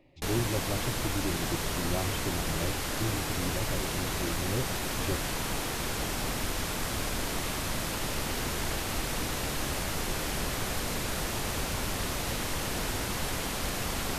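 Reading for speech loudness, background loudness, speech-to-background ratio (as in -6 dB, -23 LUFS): -36.5 LUFS, -32.0 LUFS, -4.5 dB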